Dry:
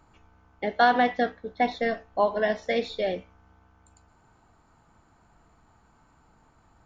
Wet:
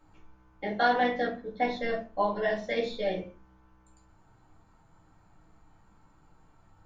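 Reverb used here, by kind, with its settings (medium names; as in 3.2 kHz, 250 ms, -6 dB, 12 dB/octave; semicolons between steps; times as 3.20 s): simulated room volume 120 m³, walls furnished, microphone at 2.2 m; trim -8 dB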